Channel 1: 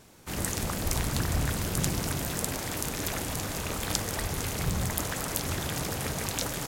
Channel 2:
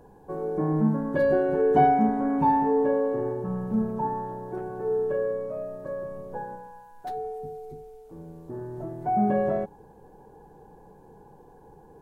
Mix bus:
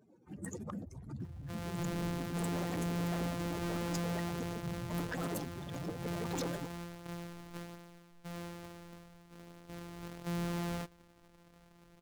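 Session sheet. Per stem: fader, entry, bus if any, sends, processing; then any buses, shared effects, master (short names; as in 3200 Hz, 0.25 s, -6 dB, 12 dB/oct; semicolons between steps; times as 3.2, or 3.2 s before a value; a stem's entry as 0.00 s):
-4.0 dB, 0.00 s, no send, spectral contrast raised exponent 3; HPF 260 Hz 12 dB/oct
-11.5 dB, 1.20 s, no send, sample sorter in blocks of 256 samples; flange 0.4 Hz, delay 3.1 ms, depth 3.8 ms, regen -64%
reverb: off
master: AGC gain up to 4.5 dB; hard clip -33 dBFS, distortion -9 dB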